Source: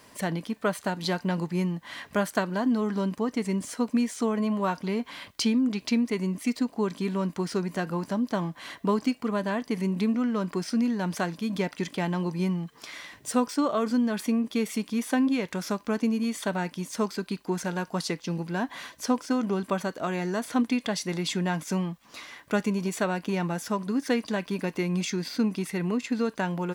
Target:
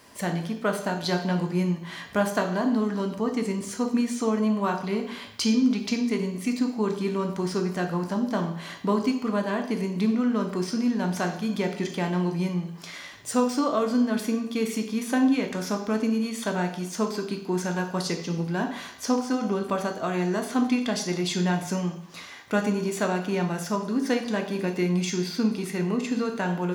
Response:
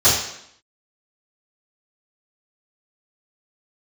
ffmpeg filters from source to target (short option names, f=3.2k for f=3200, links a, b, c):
-filter_complex "[0:a]asplit=2[a][b];[1:a]atrim=start_sample=2205,adelay=11[c];[b][c]afir=irnorm=-1:irlink=0,volume=-25.5dB[d];[a][d]amix=inputs=2:normalize=0"